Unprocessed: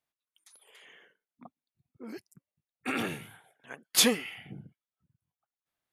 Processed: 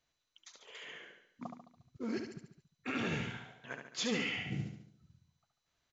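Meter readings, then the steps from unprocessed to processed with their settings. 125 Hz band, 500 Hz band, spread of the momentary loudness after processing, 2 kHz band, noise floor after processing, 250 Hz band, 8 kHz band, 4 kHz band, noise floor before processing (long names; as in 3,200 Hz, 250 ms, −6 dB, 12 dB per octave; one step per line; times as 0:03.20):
+5.0 dB, −5.5 dB, 20 LU, −3.0 dB, −85 dBFS, −3.0 dB, −16.0 dB, −10.0 dB, below −85 dBFS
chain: low-shelf EQ 100 Hz +10 dB
notch filter 800 Hz, Q 12
reversed playback
downward compressor 10 to 1, threshold −39 dBFS, peak gain reduction 21.5 dB
reversed playback
noise that follows the level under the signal 23 dB
on a send: repeating echo 71 ms, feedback 50%, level −6 dB
on the sum: level +5.5 dB
MP2 128 kbit/s 16,000 Hz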